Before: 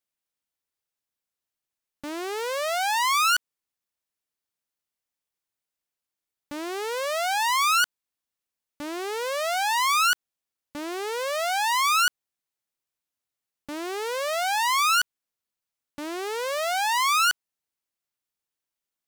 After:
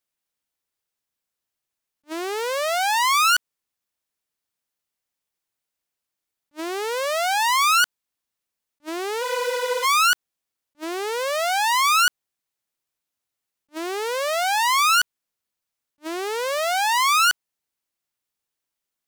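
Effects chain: spectral freeze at 9.24 s, 0.59 s; attacks held to a fixed rise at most 560 dB/s; trim +3.5 dB

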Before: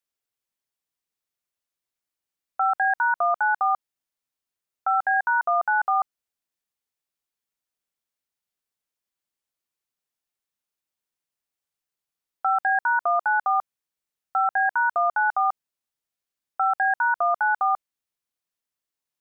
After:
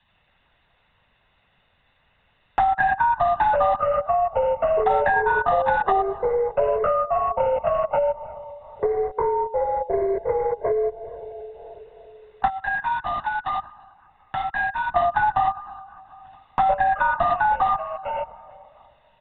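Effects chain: Chebyshev shaper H 4 -29 dB, 5 -35 dB, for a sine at -14.5 dBFS; 12.48–14.91 s: differentiator; reverberation RT60 1.4 s, pre-delay 23 ms, DRR 19 dB; LPC vocoder at 8 kHz whisper; comb 1.1 ms, depth 84%; compression, threshold -21 dBFS, peak gain reduction 6.5 dB; ever faster or slower copies 84 ms, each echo -5 st, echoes 2; three bands compressed up and down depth 70%; trim +4.5 dB

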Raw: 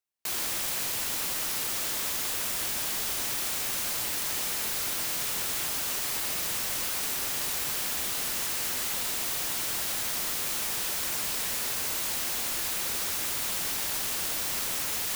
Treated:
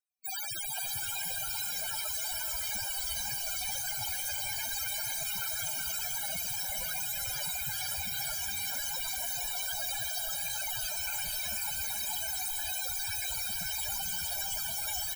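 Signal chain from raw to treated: comb 1.3 ms, depth 30%; loudest bins only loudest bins 16; on a send: echo that smears into a reverb 495 ms, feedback 45%, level -3 dB; on the sum: trim +7 dB

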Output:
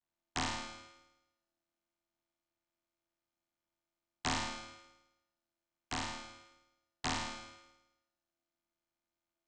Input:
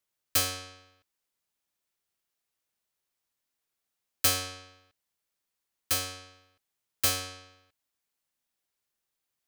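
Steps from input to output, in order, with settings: vocoder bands 16, saw 80.5 Hz; ring modulator 500 Hz; flutter echo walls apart 9.1 m, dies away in 0.95 s; trim -3 dB

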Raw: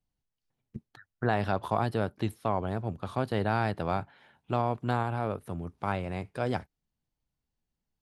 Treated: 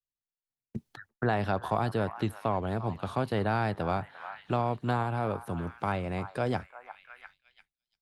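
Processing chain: repeats whose band climbs or falls 347 ms, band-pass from 1.1 kHz, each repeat 0.7 oct, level -11.5 dB; expander -57 dBFS; three bands compressed up and down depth 40%

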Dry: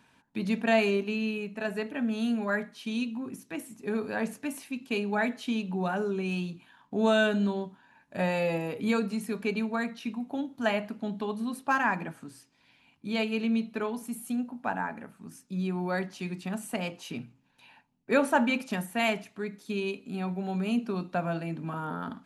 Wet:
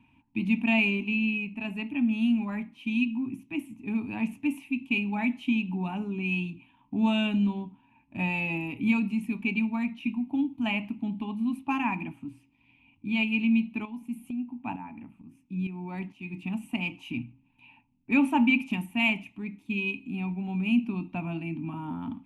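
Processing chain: FFT filter 110 Hz 0 dB, 160 Hz -9 dB, 300 Hz -1 dB, 480 Hz -30 dB, 910 Hz -8 dB, 1.6 kHz -26 dB, 2.5 kHz +1 dB, 4.4 kHz -23 dB, 12 kHz -16 dB; 13.85–16.34 s: tremolo saw up 2.2 Hz, depth 65%; tape noise reduction on one side only decoder only; trim +8.5 dB

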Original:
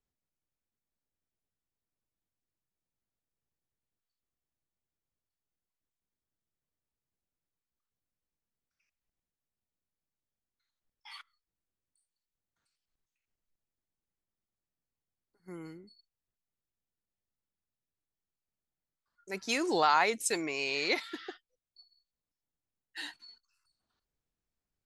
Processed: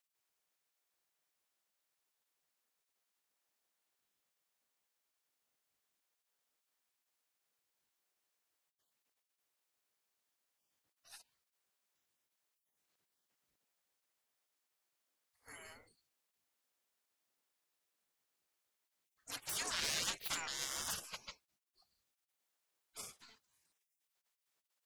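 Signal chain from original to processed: saturation -29.5 dBFS, distortion -7 dB; spectral gate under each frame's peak -25 dB weak; trim +10 dB

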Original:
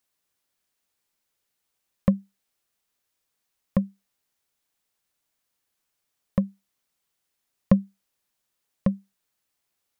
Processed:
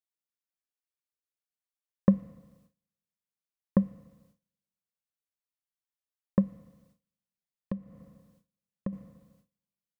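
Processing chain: FDN reverb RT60 1.5 s, low-frequency decay 1×, high-frequency decay 0.75×, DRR 18.5 dB; 6.41–8.93 s: compression 16:1, threshold -28 dBFS, peak gain reduction 17 dB; gate with hold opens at -55 dBFS

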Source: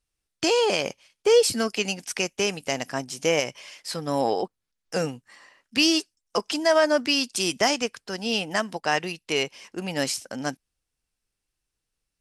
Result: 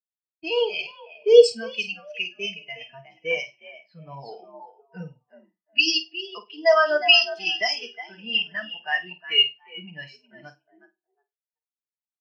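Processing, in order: in parallel at 0 dB: compression 6:1, threshold -30 dBFS, peak gain reduction 15.5 dB; on the sum: frequency-shifting echo 363 ms, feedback 40%, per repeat +62 Hz, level -5 dB; level-controlled noise filter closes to 1.4 kHz, open at -10 dBFS; gate with hold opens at -35 dBFS; amplifier tone stack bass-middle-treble 5-5-5; comb of notches 270 Hz; on a send: flutter echo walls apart 8.6 m, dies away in 0.48 s; on the sum: loudness maximiser +17 dB; spectral contrast expander 2.5:1; trim -1 dB

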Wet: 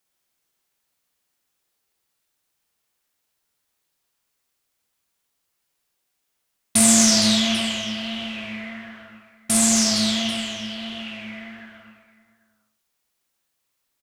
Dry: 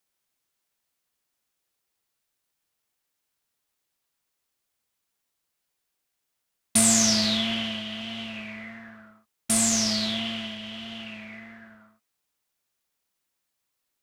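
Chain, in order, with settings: reverse bouncing-ball echo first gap 50 ms, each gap 1.6×, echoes 5; trim +2.5 dB

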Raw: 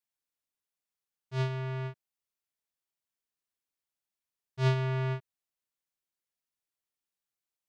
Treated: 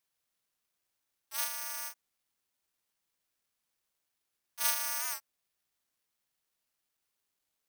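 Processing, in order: high-pass 920 Hz 24 dB/octave; careless resampling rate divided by 6×, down none, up zero stuff; warped record 78 rpm, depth 100 cents

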